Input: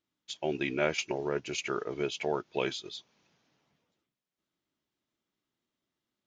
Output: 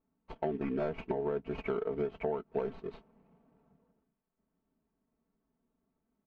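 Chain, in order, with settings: median filter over 25 samples; LPF 1700 Hz 12 dB/oct; low shelf 99 Hz +9.5 dB; comb 4.5 ms, depth 79%; compressor 6:1, threshold -36 dBFS, peak gain reduction 12.5 dB; gain +5.5 dB

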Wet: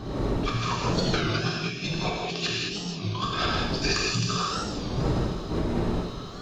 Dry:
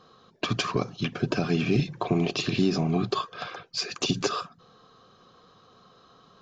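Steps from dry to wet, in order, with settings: wind noise 320 Hz -37 dBFS; high shelf 3300 Hz +8 dB; negative-ratio compressor -32 dBFS, ratio -0.5; thin delay 0.156 s, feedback 67%, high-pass 3000 Hz, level -7 dB; non-linear reverb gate 0.24 s flat, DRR -4 dB; record warp 33 1/3 rpm, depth 160 cents

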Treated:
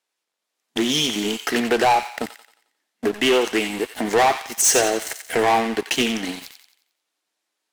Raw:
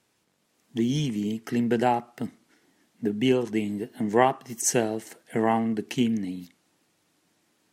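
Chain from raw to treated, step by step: HPF 540 Hz 12 dB/oct; bell 3900 Hz +2.5 dB; in parallel at -3 dB: compressor, threshold -43 dBFS, peak gain reduction 24.5 dB; on the sum: sample leveller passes 5; on a send: thin delay 89 ms, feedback 43%, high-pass 1400 Hz, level -7 dB; on the sum: Doppler distortion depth 0.13 ms; gain -4.5 dB

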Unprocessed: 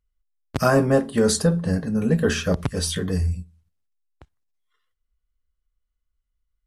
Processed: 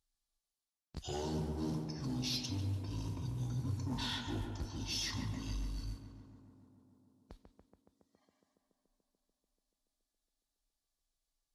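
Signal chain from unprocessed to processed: HPF 55 Hz 12 dB/oct; resonant high shelf 5200 Hz +9 dB, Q 1.5; reverse; compressor 5:1, threshold -30 dBFS, peak gain reduction 17 dB; reverse; modulation noise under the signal 27 dB; soft clip -27 dBFS, distortion -16 dB; on a send: tape echo 82 ms, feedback 87%, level -5 dB, low-pass 3700 Hz; on the sum: speed mistake 78 rpm record played at 45 rpm; gain -5.5 dB

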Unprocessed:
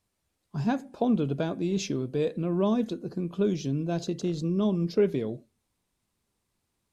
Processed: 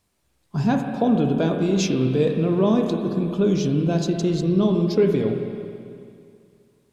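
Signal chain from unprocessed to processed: in parallel at +3 dB: limiter -22 dBFS, peak gain reduction 8 dB; on the sum: spring tank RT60 2.4 s, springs 31/47/54 ms, chirp 75 ms, DRR 3.5 dB

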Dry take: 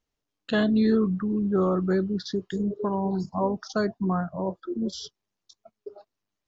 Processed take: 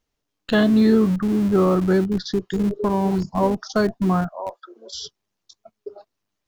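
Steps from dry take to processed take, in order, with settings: 4.29–4.94 HPF 600 Hz 24 dB/oct; in parallel at -11.5 dB: Schmitt trigger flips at -25 dBFS; on the sum: gain +5 dB

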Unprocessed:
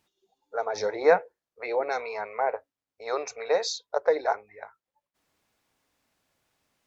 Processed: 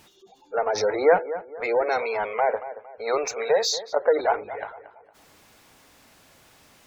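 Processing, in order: darkening echo 0.229 s, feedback 25%, low-pass 1900 Hz, level -19 dB; power-law curve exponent 0.7; spectral gate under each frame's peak -30 dB strong

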